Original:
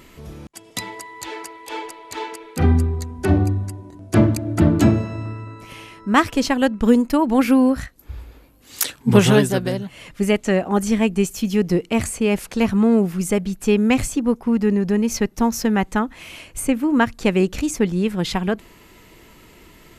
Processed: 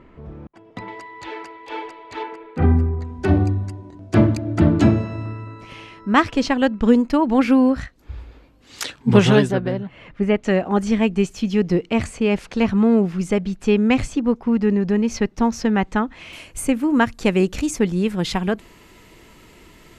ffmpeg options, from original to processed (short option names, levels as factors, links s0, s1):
-af "asetnsamples=n=441:p=0,asendcmd='0.88 lowpass f 3100;2.23 lowpass f 1900;3.05 lowpass f 5100;9.51 lowpass f 2200;10.43 lowpass f 4800;16.33 lowpass f 11000',lowpass=1400"